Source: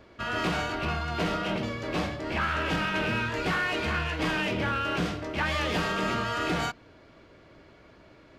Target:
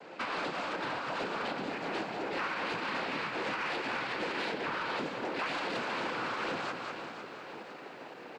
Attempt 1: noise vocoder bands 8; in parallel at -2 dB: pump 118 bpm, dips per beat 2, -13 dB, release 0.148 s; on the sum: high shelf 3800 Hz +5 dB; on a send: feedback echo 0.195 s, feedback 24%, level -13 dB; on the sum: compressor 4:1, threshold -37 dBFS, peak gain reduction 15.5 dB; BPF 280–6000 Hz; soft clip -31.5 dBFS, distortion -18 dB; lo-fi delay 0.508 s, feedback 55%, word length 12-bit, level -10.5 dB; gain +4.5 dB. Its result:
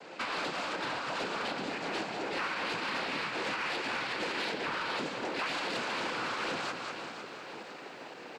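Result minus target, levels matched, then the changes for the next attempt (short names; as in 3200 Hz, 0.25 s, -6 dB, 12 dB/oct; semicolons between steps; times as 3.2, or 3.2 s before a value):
8000 Hz band +5.5 dB
change: high shelf 3800 Hz -5 dB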